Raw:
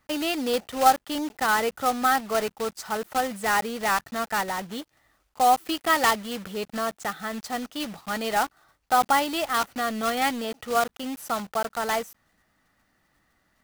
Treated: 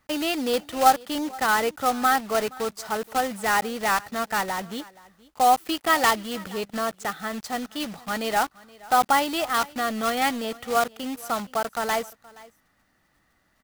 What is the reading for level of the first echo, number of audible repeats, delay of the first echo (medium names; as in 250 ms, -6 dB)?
-22.0 dB, 1, 473 ms